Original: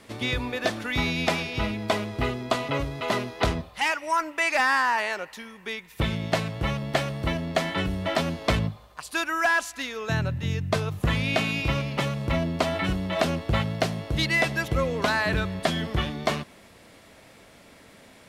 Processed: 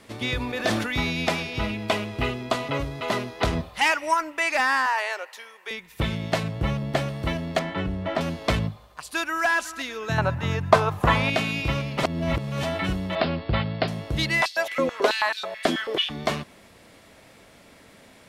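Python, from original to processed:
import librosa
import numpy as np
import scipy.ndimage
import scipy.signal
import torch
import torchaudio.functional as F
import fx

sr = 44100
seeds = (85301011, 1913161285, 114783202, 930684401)

y = fx.sustainer(x, sr, db_per_s=42.0, at=(0.4, 0.98), fade=0.02)
y = fx.peak_eq(y, sr, hz=2700.0, db=6.0, octaves=0.46, at=(1.69, 2.49))
y = fx.highpass(y, sr, hz=440.0, slope=24, at=(4.86, 5.71))
y = fx.tilt_shelf(y, sr, db=3.0, hz=660.0, at=(6.43, 7.09))
y = fx.lowpass(y, sr, hz=1700.0, slope=6, at=(7.59, 8.21))
y = fx.echo_throw(y, sr, start_s=8.87, length_s=0.57, ms=370, feedback_pct=50, wet_db=-13.0)
y = fx.peak_eq(y, sr, hz=940.0, db=15.0, octaves=1.7, at=(10.18, 11.3))
y = fx.steep_lowpass(y, sr, hz=5000.0, slope=96, at=(13.15, 13.88))
y = fx.filter_held_highpass(y, sr, hz=9.2, low_hz=290.0, high_hz=4400.0, at=(14.41, 16.09), fade=0.02)
y = fx.edit(y, sr, fx.clip_gain(start_s=3.53, length_s=0.61, db=4.0),
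    fx.reverse_span(start_s=12.03, length_s=0.6), tone=tone)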